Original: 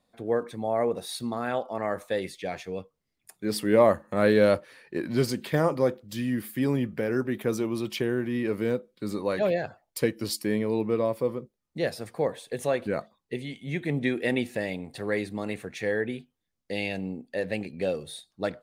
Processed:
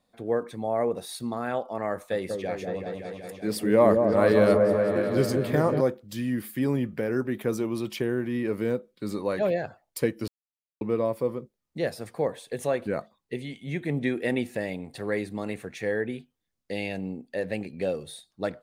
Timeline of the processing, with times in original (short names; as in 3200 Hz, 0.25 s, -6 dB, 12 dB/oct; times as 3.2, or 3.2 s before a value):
1.93–5.81 repeats that get brighter 0.188 s, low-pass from 750 Hz, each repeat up 1 oct, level -3 dB
10.28–10.81 mute
whole clip: dynamic EQ 3600 Hz, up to -4 dB, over -43 dBFS, Q 0.81